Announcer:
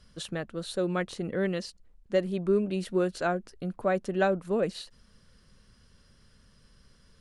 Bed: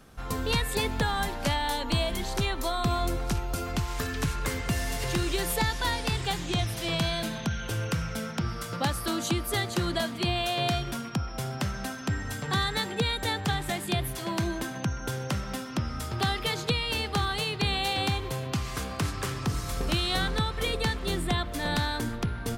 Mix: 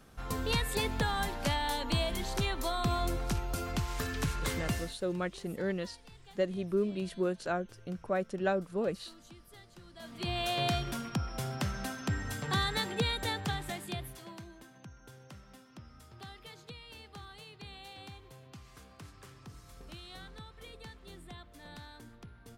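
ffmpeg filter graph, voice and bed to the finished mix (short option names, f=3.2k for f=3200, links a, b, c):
-filter_complex "[0:a]adelay=4250,volume=-5dB[a];[1:a]volume=19dB,afade=t=out:st=4.69:d=0.26:silence=0.0749894,afade=t=in:st=9.96:d=0.54:silence=0.0707946,afade=t=out:st=13.04:d=1.42:silence=0.133352[b];[a][b]amix=inputs=2:normalize=0"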